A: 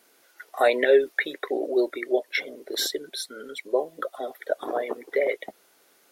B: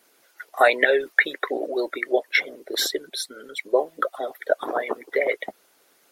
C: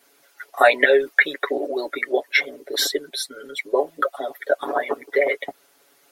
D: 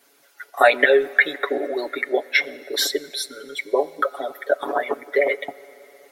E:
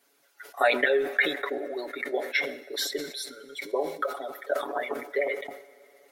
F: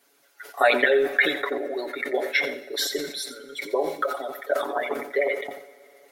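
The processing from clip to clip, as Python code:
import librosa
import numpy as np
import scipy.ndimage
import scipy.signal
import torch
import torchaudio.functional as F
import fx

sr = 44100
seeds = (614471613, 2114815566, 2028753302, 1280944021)

y1 = fx.hpss(x, sr, part='percussive', gain_db=9)
y1 = fx.dynamic_eq(y1, sr, hz=1400.0, q=0.75, threshold_db=-32.0, ratio=4.0, max_db=5)
y1 = y1 * 10.0 ** (-5.5 / 20.0)
y2 = y1 + 0.84 * np.pad(y1, (int(7.1 * sr / 1000.0), 0))[:len(y1)]
y3 = fx.rev_fdn(y2, sr, rt60_s=4.0, lf_ratio=1.0, hf_ratio=0.8, size_ms=72.0, drr_db=18.5)
y4 = fx.sustainer(y3, sr, db_per_s=95.0)
y4 = y4 * 10.0 ** (-8.5 / 20.0)
y5 = y4 + 10.0 ** (-12.0 / 20.0) * np.pad(y4, (int(88 * sr / 1000.0), 0))[:len(y4)]
y5 = y5 * 10.0 ** (3.5 / 20.0)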